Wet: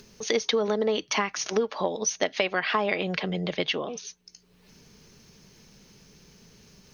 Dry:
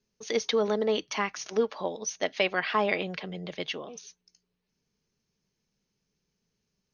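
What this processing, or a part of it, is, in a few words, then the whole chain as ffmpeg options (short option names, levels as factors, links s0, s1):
upward and downward compression: -filter_complex "[0:a]acompressor=mode=upward:threshold=0.00447:ratio=2.5,acompressor=threshold=0.0316:ratio=6,asettb=1/sr,asplit=3[s0][s1][s2];[s0]atrim=end=3.514[s3];[s1]atrim=start=3.51:end=4.05,asetpts=PTS-STARTPTS,afade=t=in:d=0.004:c=qsin,afade=t=out:st=0.536:d=0.004:c=qsin,lowpass=5800[s4];[s2]atrim=start=4.046[s5];[s3][s4]acrossfade=d=0.004:c1=hsin:c2=qsin[s6];[s6][s5]acrossfade=d=0.004:c1=qsin:c2=hsin,volume=2.66"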